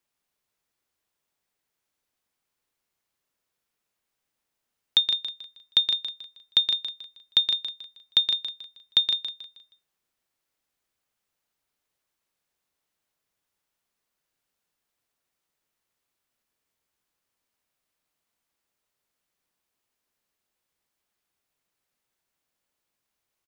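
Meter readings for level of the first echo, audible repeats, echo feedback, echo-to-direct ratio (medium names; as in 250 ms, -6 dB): -8.0 dB, 3, 34%, -7.5 dB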